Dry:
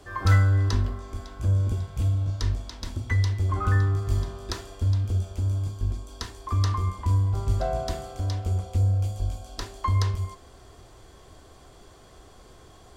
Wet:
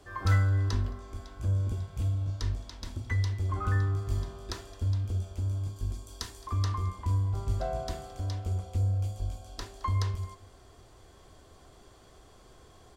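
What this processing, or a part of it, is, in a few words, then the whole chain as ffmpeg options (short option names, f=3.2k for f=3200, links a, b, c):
ducked delay: -filter_complex "[0:a]asettb=1/sr,asplit=3[a][b][c];[a]atrim=end=5.764[d];[b]atrim=start=5.76:end=6.47,asetpts=PTS-STARTPTS,afade=t=in:d=0.004:c=qsin,afade=t=out:st=0.706:d=0.004:c=qsin,aemphasis=mode=production:type=cd[e];[c]atrim=start=6.466[f];[d][e]acrossfade=d=0.004:c1=hsin:c2=qsin[g];[g][f]acrossfade=d=0.004:c1=qsin:c2=hsin,asplit=3[h][i][j];[i]adelay=217,volume=-5dB[k];[j]apad=whole_len=581522[l];[k][l]sidechaincompress=threshold=-46dB:ratio=4:attack=5.3:release=696[m];[h][m]amix=inputs=2:normalize=0,volume=-5.5dB"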